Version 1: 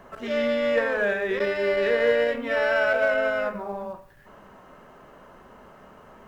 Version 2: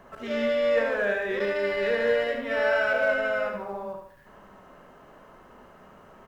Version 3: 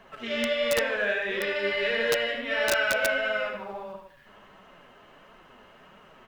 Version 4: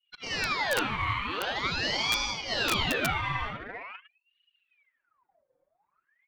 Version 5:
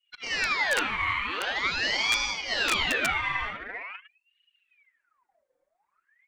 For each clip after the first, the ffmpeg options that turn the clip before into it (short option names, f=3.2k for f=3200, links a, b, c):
-af "aecho=1:1:74|148|222|296|370:0.501|0.2|0.0802|0.0321|0.0128,volume=-3dB"
-af "equalizer=f=3k:w=0.98:g=12,flanger=delay=4.2:depth=6:regen=41:speed=1.5:shape=triangular,aeval=exprs='(mod(5.96*val(0)+1,2)-1)/5.96':c=same"
-af "agate=range=-33dB:threshold=-49dB:ratio=3:detection=peak,anlmdn=0.398,aeval=exprs='val(0)*sin(2*PI*1700*n/s+1700*0.7/0.45*sin(2*PI*0.45*n/s))':c=same"
-af "equalizer=f=125:t=o:w=1:g=-11,equalizer=f=2k:t=o:w=1:g=7,equalizer=f=8k:t=o:w=1:g=8,equalizer=f=16k:t=o:w=1:g=-8,volume=-1.5dB"